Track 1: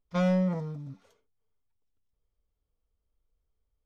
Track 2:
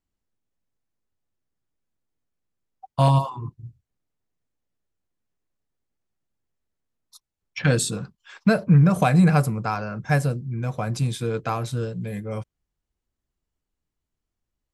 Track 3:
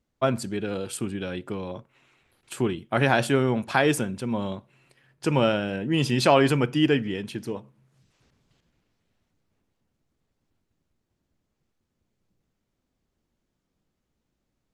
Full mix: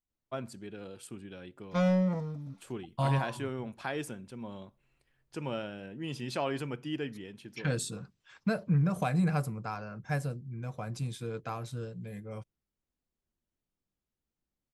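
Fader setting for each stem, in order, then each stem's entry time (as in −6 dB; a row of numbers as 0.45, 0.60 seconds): −1.0, −11.5, −14.5 decibels; 1.60, 0.00, 0.10 seconds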